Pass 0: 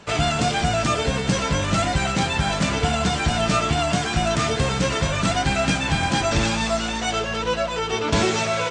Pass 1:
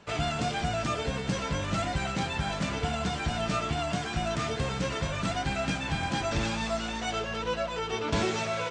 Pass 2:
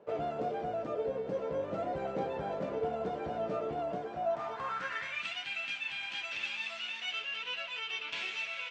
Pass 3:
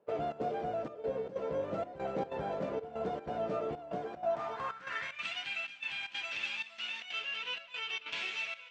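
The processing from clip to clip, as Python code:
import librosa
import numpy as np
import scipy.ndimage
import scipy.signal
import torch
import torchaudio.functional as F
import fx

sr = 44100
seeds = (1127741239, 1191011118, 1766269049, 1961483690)

y1 = fx.high_shelf(x, sr, hz=7700.0, db=-8.0)
y1 = fx.rider(y1, sr, range_db=10, speed_s=2.0)
y1 = y1 * 10.0 ** (-8.5 / 20.0)
y2 = fx.filter_sweep_bandpass(y1, sr, from_hz=490.0, to_hz=2700.0, start_s=4.06, end_s=5.27, q=3.6)
y2 = fx.rider(y2, sr, range_db=10, speed_s=0.5)
y2 = y2 * 10.0 ** (4.5 / 20.0)
y3 = fx.step_gate(y2, sr, bpm=188, pattern='.xxx.xxxxxx.', floor_db=-12.0, edge_ms=4.5)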